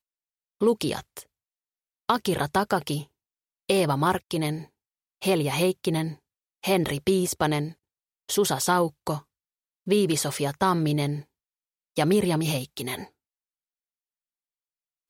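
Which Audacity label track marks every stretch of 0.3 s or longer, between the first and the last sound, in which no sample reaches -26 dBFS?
1.180000	2.090000	silence
2.990000	3.690000	silence
4.550000	5.240000	silence
6.080000	6.640000	silence
7.650000	8.300000	silence
9.170000	9.880000	silence
11.160000	11.980000	silence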